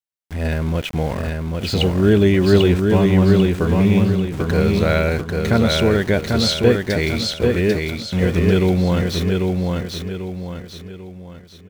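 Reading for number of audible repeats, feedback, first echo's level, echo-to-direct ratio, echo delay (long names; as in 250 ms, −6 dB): 4, 40%, −3.5 dB, −2.5 dB, 793 ms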